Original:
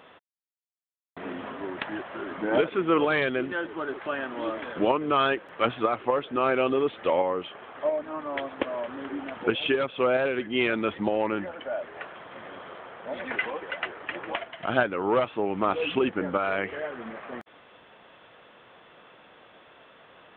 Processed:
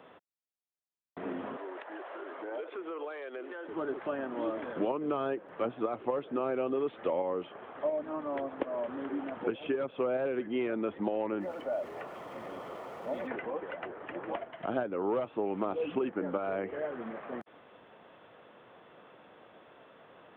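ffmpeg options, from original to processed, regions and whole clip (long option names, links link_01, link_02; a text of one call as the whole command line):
ffmpeg -i in.wav -filter_complex "[0:a]asettb=1/sr,asplit=3[link_01][link_02][link_03];[link_01]atrim=end=1.564[link_04];[link_02]atrim=start=1.56:end=3.68,asetpts=PTS-STARTPTS,afade=type=in:duration=0.004:curve=qsin,afade=type=out:start_time=2.116:duration=0.004:curve=qsin,highpass=frequency=390:width=0.5412,highpass=frequency=390:width=1.3066,acompressor=threshold=-36dB:ratio=4:attack=3.2:release=140:knee=1:detection=peak[link_05];[link_03]atrim=start=3.676[link_06];[link_04][link_05]acrossfade=duration=0.004:curve1=hsin:curve2=qsin[link_07];[link_07][link_06]acrossfade=duration=0.004:curve1=qsin:curve2=hsin,asettb=1/sr,asplit=3[link_08][link_09][link_10];[link_08]atrim=end=11.404[link_11];[link_09]atrim=start=11.4:end=13.27,asetpts=PTS-STARTPTS,afade=type=in:duration=0.004:curve=qsin,afade=type=out:start_time=1.866:duration=0.004:curve=qsin,aeval=exprs='val(0)+0.5*0.00562*sgn(val(0))':channel_layout=same,bandreject=frequency=1600:width=6.6[link_12];[link_10]atrim=start=13.266[link_13];[link_11][link_12]acrossfade=duration=0.004:curve1=hsin:curve2=qsin[link_14];[link_14][link_13]acrossfade=duration=0.004:curve1=qsin:curve2=hsin,highpass=frequency=120:poles=1,tiltshelf=frequency=1300:gain=5.5,acrossover=split=200|890|2400[link_15][link_16][link_17][link_18];[link_15]acompressor=threshold=-46dB:ratio=4[link_19];[link_16]acompressor=threshold=-25dB:ratio=4[link_20];[link_17]acompressor=threshold=-40dB:ratio=4[link_21];[link_18]acompressor=threshold=-54dB:ratio=4[link_22];[link_19][link_20][link_21][link_22]amix=inputs=4:normalize=0,volume=-4.5dB" out.wav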